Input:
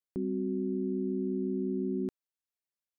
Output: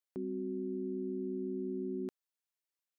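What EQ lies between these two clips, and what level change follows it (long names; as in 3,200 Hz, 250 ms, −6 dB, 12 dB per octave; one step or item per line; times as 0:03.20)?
high-pass filter 450 Hz 6 dB per octave
0.0 dB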